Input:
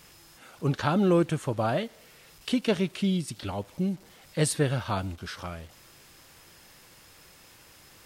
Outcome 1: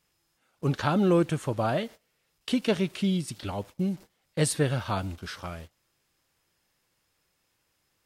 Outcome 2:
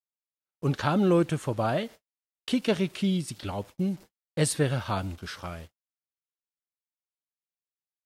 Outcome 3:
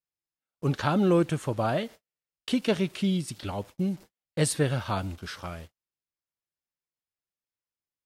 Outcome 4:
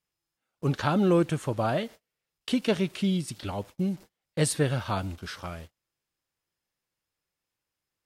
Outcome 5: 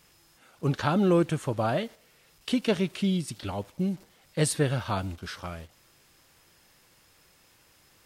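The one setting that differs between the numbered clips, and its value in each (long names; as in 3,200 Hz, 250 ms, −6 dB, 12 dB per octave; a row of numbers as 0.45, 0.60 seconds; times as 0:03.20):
noise gate, range: −20, −59, −46, −33, −7 decibels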